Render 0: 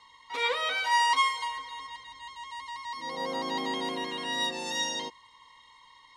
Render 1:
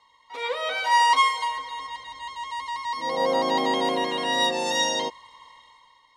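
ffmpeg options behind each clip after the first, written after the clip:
-af "equalizer=f=620:t=o:w=0.91:g=9,dynaudnorm=f=130:g=11:m=12dB,volume=-6dB"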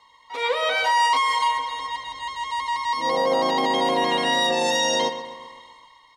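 -filter_complex "[0:a]asplit=2[a][b];[b]adelay=127,lowpass=f=3.9k:p=1,volume=-12dB,asplit=2[c][d];[d]adelay=127,lowpass=f=3.9k:p=1,volume=0.54,asplit=2[e][f];[f]adelay=127,lowpass=f=3.9k:p=1,volume=0.54,asplit=2[g][h];[h]adelay=127,lowpass=f=3.9k:p=1,volume=0.54,asplit=2[i][j];[j]adelay=127,lowpass=f=3.9k:p=1,volume=0.54,asplit=2[k][l];[l]adelay=127,lowpass=f=3.9k:p=1,volume=0.54[m];[c][e][g][i][k][m]amix=inputs=6:normalize=0[n];[a][n]amix=inputs=2:normalize=0,alimiter=limit=-18dB:level=0:latency=1:release=16,volume=5dB"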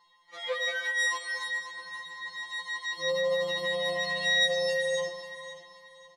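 -af "aecho=1:1:534|1068|1602:0.188|0.0603|0.0193,afftfilt=real='re*2.83*eq(mod(b,8),0)':imag='im*2.83*eq(mod(b,8),0)':win_size=2048:overlap=0.75,volume=-6dB"

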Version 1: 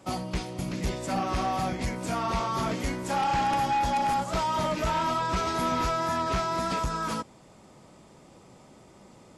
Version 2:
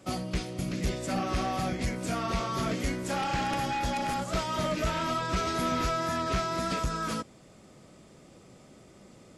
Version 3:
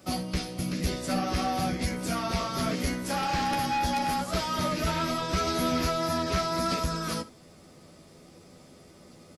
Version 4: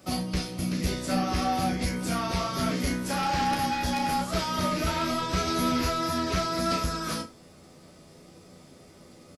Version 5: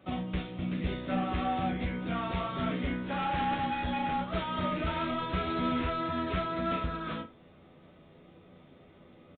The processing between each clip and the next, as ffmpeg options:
-af "equalizer=f=910:w=3.2:g=-9.5"
-filter_complex "[0:a]aexciter=amount=1.4:drive=5.2:freq=4.2k,asplit=2[a][b];[b]aecho=0:1:12|72:0.562|0.141[c];[a][c]amix=inputs=2:normalize=0"
-filter_complex "[0:a]asplit=2[a][b];[b]adelay=33,volume=-6.5dB[c];[a][c]amix=inputs=2:normalize=0"
-af "aresample=8000,aresample=44100,volume=-4dB"

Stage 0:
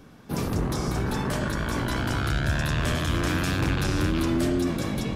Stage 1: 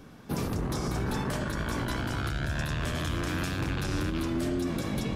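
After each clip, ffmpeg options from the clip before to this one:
-af "alimiter=limit=-21.5dB:level=0:latency=1:release=153"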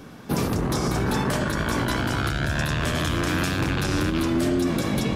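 -af "lowshelf=f=73:g=-7.5,volume=8dB"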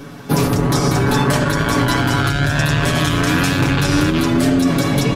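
-af "aecho=1:1:7.1:0.68,volume=6.5dB"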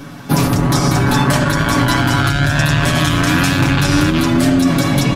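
-af "equalizer=f=440:w=4.7:g=-9,volume=2.5dB"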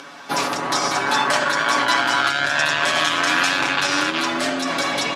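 -af "acompressor=mode=upward:threshold=-32dB:ratio=2.5,highpass=610,lowpass=6.9k" -ar 48000 -c:a libopus -b:a 48k

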